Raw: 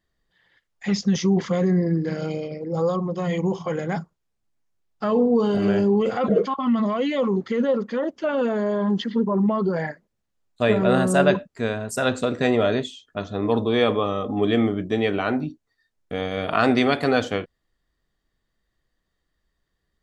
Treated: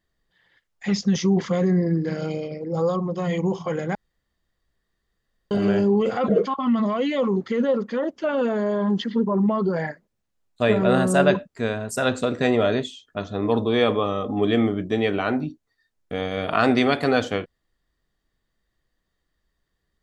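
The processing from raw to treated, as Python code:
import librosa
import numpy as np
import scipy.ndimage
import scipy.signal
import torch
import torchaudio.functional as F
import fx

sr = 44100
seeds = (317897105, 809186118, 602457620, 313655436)

y = fx.edit(x, sr, fx.room_tone_fill(start_s=3.95, length_s=1.56), tone=tone)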